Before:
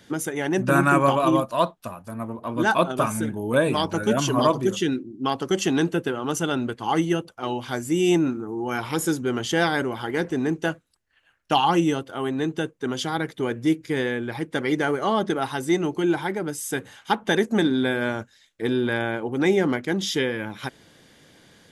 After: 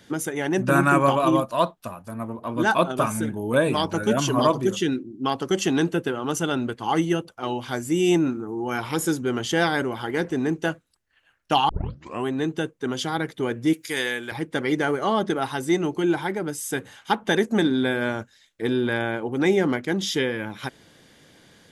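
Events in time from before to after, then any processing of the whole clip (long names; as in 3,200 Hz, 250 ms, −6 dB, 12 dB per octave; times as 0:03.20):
0:11.69: tape start 0.56 s
0:13.73–0:14.32: spectral tilt +4 dB per octave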